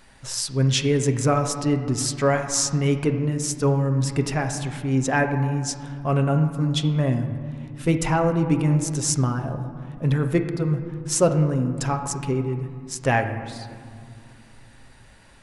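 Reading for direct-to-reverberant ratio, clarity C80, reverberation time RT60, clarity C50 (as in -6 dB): 5.0 dB, 9.5 dB, 2.2 s, 8.5 dB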